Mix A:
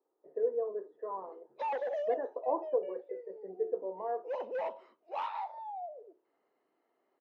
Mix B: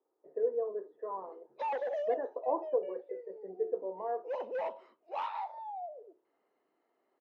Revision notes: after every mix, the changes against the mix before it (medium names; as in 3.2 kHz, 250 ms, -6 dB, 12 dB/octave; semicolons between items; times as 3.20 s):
no change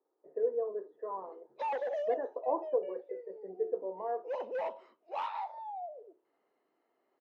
background: add treble shelf 6.5 kHz +4.5 dB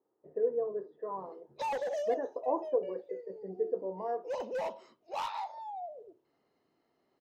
master: remove three-band isolator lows -23 dB, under 280 Hz, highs -20 dB, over 3.1 kHz